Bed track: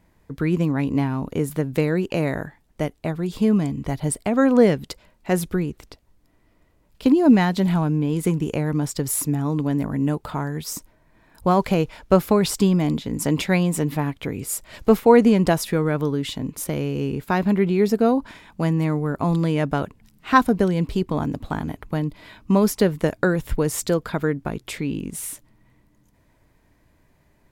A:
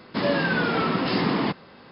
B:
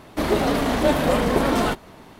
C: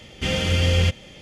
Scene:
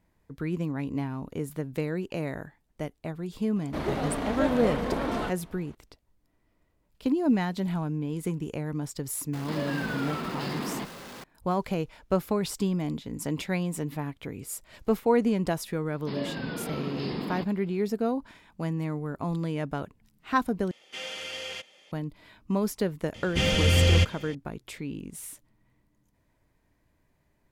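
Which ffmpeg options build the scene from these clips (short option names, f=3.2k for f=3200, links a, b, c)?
-filter_complex "[1:a]asplit=2[a][b];[3:a]asplit=2[c][d];[0:a]volume=-9.5dB[e];[2:a]highshelf=f=5.7k:g=-10.5[f];[a]aeval=exprs='val(0)+0.5*0.0473*sgn(val(0))':c=same[g];[b]equalizer=f=1.4k:t=o:w=1.8:g=-7.5[h];[c]highpass=590[i];[e]asplit=2[j][k];[j]atrim=end=20.714[l];[i]atrim=end=1.21,asetpts=PTS-STARTPTS,volume=-10.5dB[m];[k]atrim=start=21.916[n];[f]atrim=end=2.19,asetpts=PTS-STARTPTS,volume=-9dB,afade=t=in:d=0.004:c=hsin,afade=t=out:st=2.186:d=0.004:c=hsin,adelay=3560[o];[g]atrim=end=1.91,asetpts=PTS-STARTPTS,volume=-12dB,afade=t=in:d=0.004:c=hsin,afade=t=out:st=1.906:d=0.004:c=hsin,adelay=9330[p];[h]atrim=end=1.91,asetpts=PTS-STARTPTS,volume=-9dB,afade=t=in:d=0.004:c=hsin,afade=t=out:st=1.906:d=0.004:c=hsin,adelay=15920[q];[d]atrim=end=1.21,asetpts=PTS-STARTPTS,volume=-1dB,afade=t=in:d=0.004:c=hsin,afade=t=out:st=1.206:d=0.004:c=hsin,adelay=23140[r];[l][m]acrossfade=d=0.004:c1=hsin:c2=hsin[s];[s][n]acrossfade=d=0.004:c1=hsin:c2=hsin[t];[t][o][p][q][r]amix=inputs=5:normalize=0"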